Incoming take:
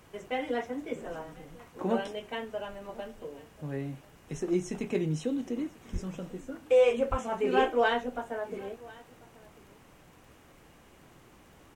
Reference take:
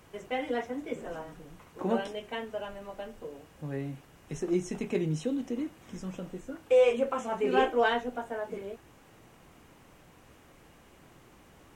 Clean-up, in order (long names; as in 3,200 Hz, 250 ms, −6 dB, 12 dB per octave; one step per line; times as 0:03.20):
click removal
0:05.92–0:06.04: high-pass filter 140 Hz 24 dB per octave
0:07.10–0:07.22: high-pass filter 140 Hz 24 dB per octave
echo removal 1,043 ms −22.5 dB